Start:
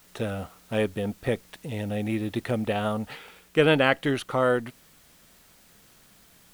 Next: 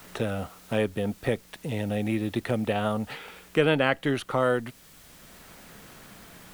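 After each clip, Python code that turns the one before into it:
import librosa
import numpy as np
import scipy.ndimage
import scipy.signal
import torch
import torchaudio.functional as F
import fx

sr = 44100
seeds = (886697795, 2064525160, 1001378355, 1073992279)

y = fx.band_squash(x, sr, depth_pct=40)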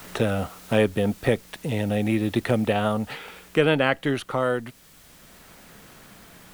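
y = fx.rider(x, sr, range_db=10, speed_s=2.0)
y = y * librosa.db_to_amplitude(2.5)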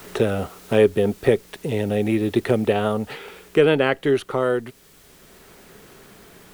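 y = fx.peak_eq(x, sr, hz=400.0, db=11.0, octaves=0.38)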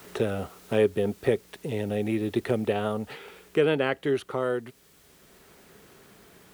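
y = scipy.signal.sosfilt(scipy.signal.butter(2, 42.0, 'highpass', fs=sr, output='sos'), x)
y = y * librosa.db_to_amplitude(-6.5)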